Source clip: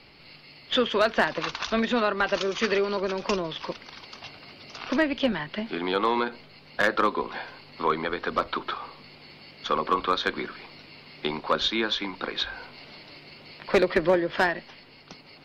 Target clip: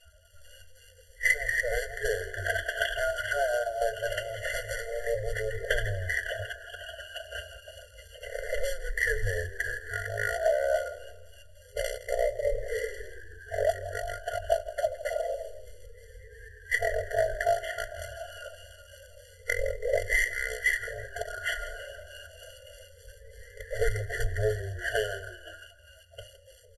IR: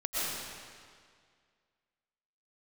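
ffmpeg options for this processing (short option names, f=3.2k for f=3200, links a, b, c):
-filter_complex "[0:a]afftfilt=real='re*pow(10,13/40*sin(2*PI*(0.94*log(max(b,1)*sr/1024/100)/log(2)-(-0.47)*(pts-256)/sr)))':imag='im*pow(10,13/40*sin(2*PI*(0.94*log(max(b,1)*sr/1024/100)/log(2)-(-0.47)*(pts-256)/sr)))':win_size=1024:overlap=0.75,afftdn=nr=31:nf=-47,acrossover=split=6300[a][b];[b]acompressor=threshold=-57dB:ratio=4:attack=1:release=60[c];[a][c]amix=inputs=2:normalize=0,acrossover=split=1300[d][e];[e]acrusher=bits=2:mode=log:mix=0:aa=0.000001[f];[d][f]amix=inputs=2:normalize=0,afftfilt=real='re*(1-between(b*sr/4096,190,730))':imag='im*(1-between(b*sr/4096,190,730))':win_size=4096:overlap=0.75,acompressor=threshold=-27dB:ratio=3,lowshelf=f=100:t=q:w=1.5:g=8.5,asplit=2[g][h];[h]asplit=3[i][j][k];[i]adelay=94,afreqshift=-60,volume=-15.5dB[l];[j]adelay=188,afreqshift=-120,volume=-23.7dB[m];[k]adelay=282,afreqshift=-180,volume=-31.9dB[n];[l][m][n]amix=inputs=3:normalize=0[o];[g][o]amix=inputs=2:normalize=0,asetrate=25442,aresample=44100,afftfilt=real='re*eq(mod(floor(b*sr/1024/690),2),0)':imag='im*eq(mod(floor(b*sr/1024/690),2),0)':win_size=1024:overlap=0.75,volume=4.5dB"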